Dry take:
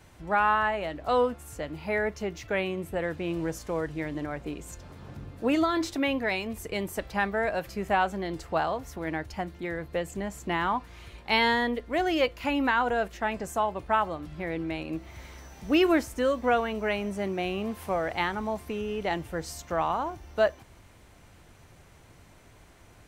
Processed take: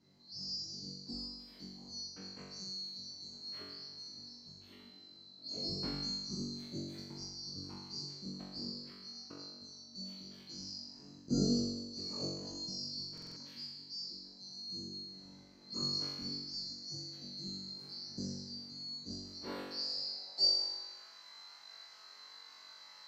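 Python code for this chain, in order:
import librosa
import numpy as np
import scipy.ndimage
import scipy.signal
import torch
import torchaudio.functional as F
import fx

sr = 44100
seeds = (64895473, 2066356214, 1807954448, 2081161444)

y = fx.band_swap(x, sr, width_hz=4000)
y = fx.filter_sweep_bandpass(y, sr, from_hz=210.0, to_hz=1200.0, start_s=19.01, end_s=21.01, q=1.8)
y = fx.room_flutter(y, sr, wall_m=3.6, rt60_s=1.1)
y = fx.buffer_glitch(y, sr, at_s=(13.13,), block=2048, repeats=4)
y = y * 10.0 ** (8.0 / 20.0)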